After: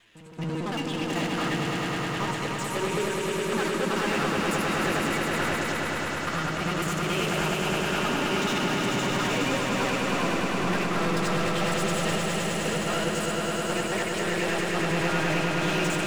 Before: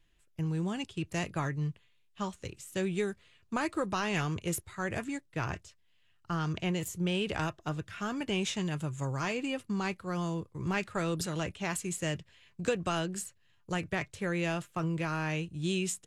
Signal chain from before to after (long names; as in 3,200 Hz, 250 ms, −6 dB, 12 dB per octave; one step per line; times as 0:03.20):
reversed piece by piece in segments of 55 ms
mid-hump overdrive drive 33 dB, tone 3,600 Hz, clips at −16.5 dBFS
echo ahead of the sound 232 ms −15.5 dB
flanger 0.58 Hz, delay 8.4 ms, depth 6.7 ms, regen +51%
on a send: echo that builds up and dies away 104 ms, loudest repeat 5, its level −5 dB
on the sum: level −3 dB